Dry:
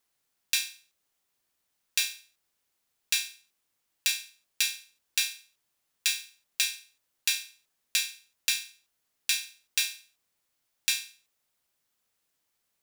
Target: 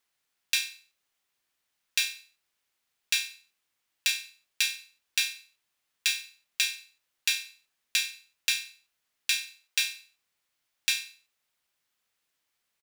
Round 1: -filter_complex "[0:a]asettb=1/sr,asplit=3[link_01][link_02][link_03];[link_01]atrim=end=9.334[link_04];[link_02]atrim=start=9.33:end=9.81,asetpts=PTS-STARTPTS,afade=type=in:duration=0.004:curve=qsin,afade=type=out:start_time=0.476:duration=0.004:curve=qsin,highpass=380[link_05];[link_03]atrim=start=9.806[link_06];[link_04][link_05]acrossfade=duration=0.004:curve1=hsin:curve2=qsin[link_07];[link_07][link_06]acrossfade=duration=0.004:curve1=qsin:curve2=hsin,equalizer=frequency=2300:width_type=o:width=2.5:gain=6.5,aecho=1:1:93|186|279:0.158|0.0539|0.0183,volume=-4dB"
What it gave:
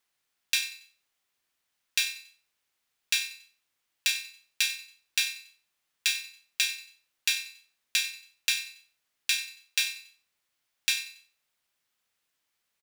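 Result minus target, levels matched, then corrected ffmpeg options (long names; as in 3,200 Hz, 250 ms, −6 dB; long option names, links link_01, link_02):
echo-to-direct +9.5 dB
-filter_complex "[0:a]asettb=1/sr,asplit=3[link_01][link_02][link_03];[link_01]atrim=end=9.334[link_04];[link_02]atrim=start=9.33:end=9.81,asetpts=PTS-STARTPTS,afade=type=in:duration=0.004:curve=qsin,afade=type=out:start_time=0.476:duration=0.004:curve=qsin,highpass=380[link_05];[link_03]atrim=start=9.806[link_06];[link_04][link_05]acrossfade=duration=0.004:curve1=hsin:curve2=qsin[link_07];[link_07][link_06]acrossfade=duration=0.004:curve1=qsin:curve2=hsin,equalizer=frequency=2300:width_type=o:width=2.5:gain=6.5,aecho=1:1:93|186:0.0531|0.0181,volume=-4dB"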